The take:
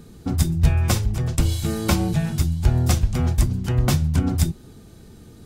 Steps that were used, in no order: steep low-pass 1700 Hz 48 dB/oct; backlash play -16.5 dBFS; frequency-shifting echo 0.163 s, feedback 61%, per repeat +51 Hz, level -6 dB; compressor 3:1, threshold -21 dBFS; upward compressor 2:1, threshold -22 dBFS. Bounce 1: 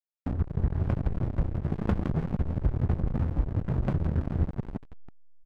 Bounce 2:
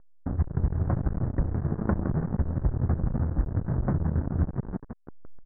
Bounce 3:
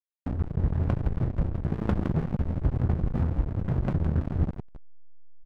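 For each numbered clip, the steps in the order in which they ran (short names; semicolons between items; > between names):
upward compressor > frequency-shifting echo > steep low-pass > compressor > backlash; frequency-shifting echo > upward compressor > compressor > backlash > steep low-pass; upward compressor > compressor > frequency-shifting echo > steep low-pass > backlash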